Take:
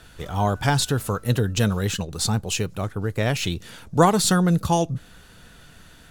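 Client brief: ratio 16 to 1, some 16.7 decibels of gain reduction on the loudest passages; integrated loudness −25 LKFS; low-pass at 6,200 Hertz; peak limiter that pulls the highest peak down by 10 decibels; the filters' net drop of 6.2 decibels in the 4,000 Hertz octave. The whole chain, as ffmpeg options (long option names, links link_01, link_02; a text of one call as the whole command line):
ffmpeg -i in.wav -af "lowpass=6200,equalizer=frequency=4000:width_type=o:gain=-7,acompressor=threshold=-27dB:ratio=16,volume=12dB,alimiter=limit=-15.5dB:level=0:latency=1" out.wav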